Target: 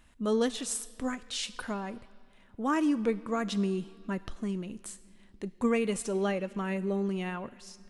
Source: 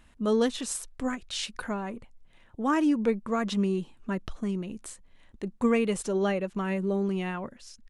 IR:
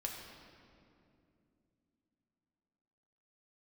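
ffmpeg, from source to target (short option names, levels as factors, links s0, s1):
-filter_complex "[0:a]asplit=2[s0][s1];[1:a]atrim=start_sample=2205,lowshelf=f=490:g=-9.5,highshelf=f=3900:g=11.5[s2];[s1][s2]afir=irnorm=-1:irlink=0,volume=0.237[s3];[s0][s3]amix=inputs=2:normalize=0,volume=0.668"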